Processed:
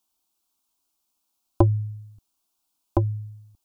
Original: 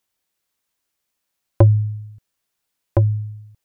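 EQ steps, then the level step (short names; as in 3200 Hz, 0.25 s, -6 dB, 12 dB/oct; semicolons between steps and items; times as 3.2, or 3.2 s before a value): fixed phaser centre 500 Hz, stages 6; +2.0 dB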